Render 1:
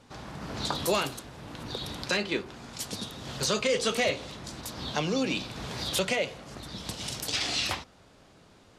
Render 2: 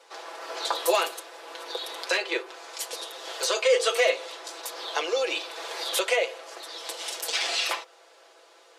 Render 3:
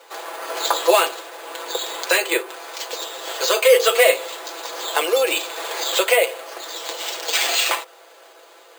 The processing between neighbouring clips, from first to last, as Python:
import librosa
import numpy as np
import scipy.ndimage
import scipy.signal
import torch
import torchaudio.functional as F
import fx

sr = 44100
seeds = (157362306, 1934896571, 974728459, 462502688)

y1 = scipy.signal.sosfilt(scipy.signal.butter(8, 390.0, 'highpass', fs=sr, output='sos'), x)
y1 = y1 + 0.72 * np.pad(y1, (int(6.0 * sr / 1000.0), 0))[:len(y1)]
y1 = fx.dynamic_eq(y1, sr, hz=5000.0, q=0.98, threshold_db=-42.0, ratio=4.0, max_db=-4)
y1 = y1 * 10.0 ** (3.0 / 20.0)
y2 = np.repeat(scipy.signal.resample_poly(y1, 1, 4), 4)[:len(y1)]
y2 = y2 * 10.0 ** (8.0 / 20.0)